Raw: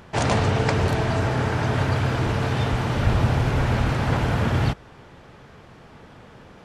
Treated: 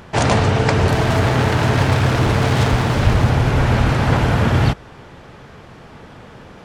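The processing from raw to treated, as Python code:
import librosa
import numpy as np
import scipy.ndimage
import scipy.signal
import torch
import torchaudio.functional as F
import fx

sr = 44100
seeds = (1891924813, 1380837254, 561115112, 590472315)

y = fx.self_delay(x, sr, depth_ms=0.48, at=(0.93, 3.31))
y = fx.rider(y, sr, range_db=10, speed_s=0.5)
y = y * 10.0 ** (6.5 / 20.0)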